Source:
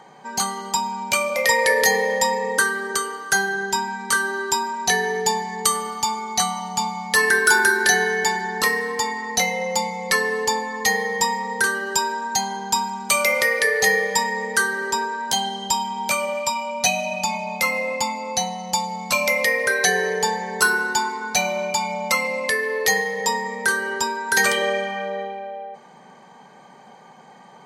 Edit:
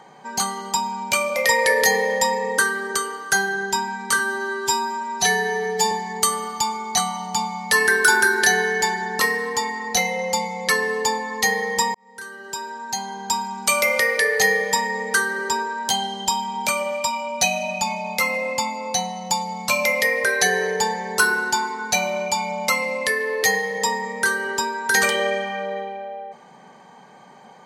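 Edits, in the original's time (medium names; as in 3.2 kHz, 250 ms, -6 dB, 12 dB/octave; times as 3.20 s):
4.19–5.34 s: stretch 1.5×
11.37–13.11 s: fade in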